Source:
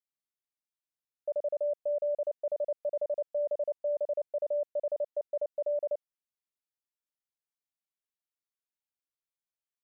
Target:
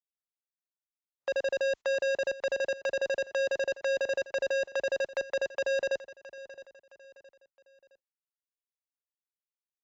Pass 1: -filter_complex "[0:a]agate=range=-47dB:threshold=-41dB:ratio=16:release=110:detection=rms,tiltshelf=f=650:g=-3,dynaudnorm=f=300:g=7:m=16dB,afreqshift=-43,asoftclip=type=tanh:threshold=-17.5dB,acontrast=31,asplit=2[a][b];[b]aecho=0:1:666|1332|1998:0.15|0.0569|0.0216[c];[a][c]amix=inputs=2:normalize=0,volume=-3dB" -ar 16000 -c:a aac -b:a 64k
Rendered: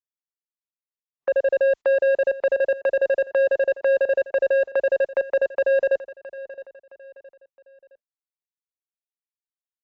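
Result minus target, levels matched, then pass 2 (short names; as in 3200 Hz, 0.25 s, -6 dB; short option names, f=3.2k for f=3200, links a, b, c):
soft clip: distortion -6 dB
-filter_complex "[0:a]agate=range=-47dB:threshold=-41dB:ratio=16:release=110:detection=rms,tiltshelf=f=650:g=-3,dynaudnorm=f=300:g=7:m=16dB,afreqshift=-43,asoftclip=type=tanh:threshold=-29dB,acontrast=31,asplit=2[a][b];[b]aecho=0:1:666|1332|1998:0.15|0.0569|0.0216[c];[a][c]amix=inputs=2:normalize=0,volume=-3dB" -ar 16000 -c:a aac -b:a 64k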